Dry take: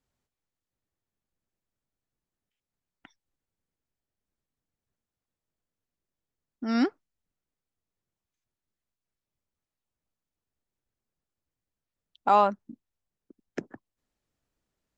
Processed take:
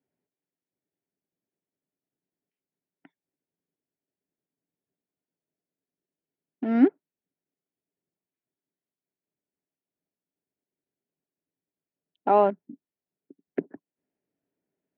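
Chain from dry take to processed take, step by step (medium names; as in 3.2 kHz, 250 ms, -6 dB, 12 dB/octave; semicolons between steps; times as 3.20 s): in parallel at -6 dB: bit crusher 5-bit; on the sum: cabinet simulation 150–2500 Hz, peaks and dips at 170 Hz +8 dB, 280 Hz +9 dB, 400 Hz +9 dB, 630 Hz +5 dB, 1.2 kHz -9 dB; trim -4.5 dB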